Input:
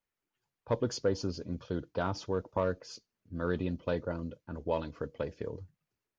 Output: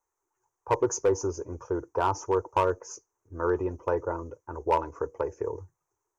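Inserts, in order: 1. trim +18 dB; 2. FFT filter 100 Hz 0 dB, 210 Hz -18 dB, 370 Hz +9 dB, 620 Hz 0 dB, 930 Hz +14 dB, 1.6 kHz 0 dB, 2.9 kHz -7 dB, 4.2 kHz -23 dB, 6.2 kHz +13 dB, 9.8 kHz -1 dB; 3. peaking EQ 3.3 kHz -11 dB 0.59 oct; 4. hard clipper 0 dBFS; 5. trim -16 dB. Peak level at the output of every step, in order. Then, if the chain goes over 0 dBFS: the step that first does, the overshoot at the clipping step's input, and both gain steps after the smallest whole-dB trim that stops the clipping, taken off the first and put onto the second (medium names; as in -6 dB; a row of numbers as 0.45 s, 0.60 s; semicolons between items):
+0.5 dBFS, +6.0 dBFS, +6.0 dBFS, 0.0 dBFS, -16.0 dBFS; step 1, 6.0 dB; step 1 +12 dB, step 5 -10 dB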